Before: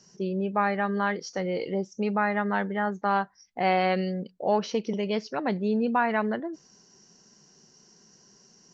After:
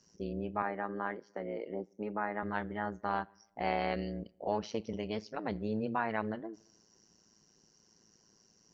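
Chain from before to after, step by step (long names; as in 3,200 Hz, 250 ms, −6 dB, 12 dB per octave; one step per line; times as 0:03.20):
on a send at −24 dB: convolution reverb RT60 0.95 s, pre-delay 6 ms
on the sum: amplitude modulation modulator 110 Hz, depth 70%
0:00.62–0:02.43: three-way crossover with the lows and the highs turned down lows −17 dB, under 180 Hz, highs −22 dB, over 2,300 Hz
level −5.5 dB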